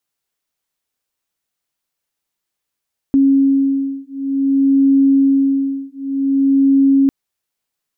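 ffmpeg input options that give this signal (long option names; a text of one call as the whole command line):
ffmpeg -f lavfi -i "aevalsrc='0.2*(sin(2*PI*273*t)+sin(2*PI*273.54*t))':duration=3.95:sample_rate=44100" out.wav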